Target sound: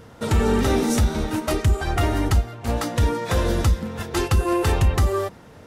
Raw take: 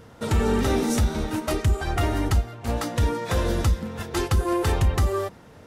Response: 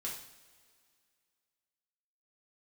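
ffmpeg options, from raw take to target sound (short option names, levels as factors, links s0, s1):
-filter_complex "[0:a]asettb=1/sr,asplit=3[s0][s1][s2];[s0]atrim=end=4.164[s3];[s1]atrim=start=4.16:end=4.93,asetpts=PTS-STARTPTS,afade=t=in:d=0.004:c=qsin,afade=t=out:st=0.766:d=0.004:c=qsin,aeval=exprs='val(0)+0.00708*sin(2*PI*2700*n/s)':c=same[s4];[s2]atrim=start=4.926[s5];[s3][s4]acrossfade=d=0.004:c1=hsin:c2=qsin[s6];[s6][s5]acrossfade=d=0.004:c1=qsin:c2=hsin,volume=1.33"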